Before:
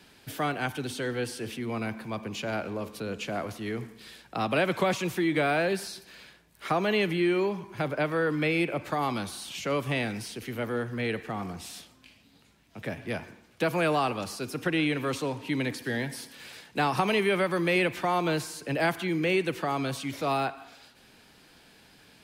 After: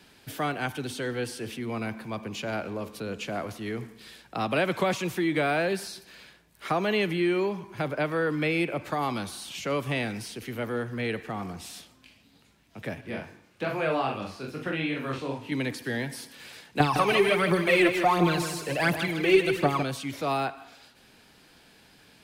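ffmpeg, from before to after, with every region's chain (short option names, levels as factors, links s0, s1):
-filter_complex "[0:a]asettb=1/sr,asplit=3[s0][s1][s2];[s0]atrim=end=13.014[s3];[s1]atrim=start=13.01:end=15.52,asetpts=PTS-STARTPTS,afade=t=in:d=0.004:c=qsin,afade=t=out:st=2.506:d=0.004:c=qsin,acrossover=split=4200[s4][s5];[s5]acompressor=threshold=0.00178:ratio=4:attack=1:release=60[s6];[s4][s6]amix=inputs=2:normalize=0,flanger=delay=19.5:depth=4.3:speed=2.5,asplit=2[s7][s8];[s8]adelay=44,volume=0.596[s9];[s7][s9]amix=inputs=2:normalize=0,atrim=end_sample=110691[s10];[s2]atrim=start=15.516[s11];[s3][s10]acrossfade=d=0.004:c1=hsin:c2=qsin[s12];[s12][s11]acrossfade=d=0.004:c1=qsin:c2=hsin,asettb=1/sr,asplit=3[s13][s14][s15];[s13]atrim=end=16.804[s16];[s14]atrim=start=16.8:end=19.83,asetpts=PTS-STARTPTS,afade=t=in:d=0.004:c=qsin,afade=t=out:st=3.026:d=0.004:c=qsin,aphaser=in_gain=1:out_gain=1:delay=3:decay=0.72:speed=1.4:type=triangular,aecho=1:1:157|314|471|628|785:0.376|0.158|0.0663|0.0278|0.0117,atrim=end_sample=133623[s17];[s15]atrim=start=19.826[s18];[s16][s17]acrossfade=d=0.004:c1=hsin:c2=qsin[s19];[s19][s18]acrossfade=d=0.004:c1=qsin:c2=hsin"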